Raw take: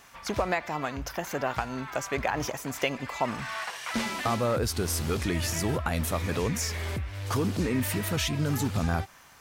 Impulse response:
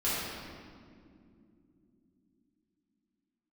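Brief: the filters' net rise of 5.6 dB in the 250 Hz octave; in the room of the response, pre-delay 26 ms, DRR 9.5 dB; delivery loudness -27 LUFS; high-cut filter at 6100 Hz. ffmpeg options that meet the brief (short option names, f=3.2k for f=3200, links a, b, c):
-filter_complex "[0:a]lowpass=6.1k,equalizer=f=250:t=o:g=7,asplit=2[a][b];[1:a]atrim=start_sample=2205,adelay=26[c];[b][c]afir=irnorm=-1:irlink=0,volume=-19dB[d];[a][d]amix=inputs=2:normalize=0"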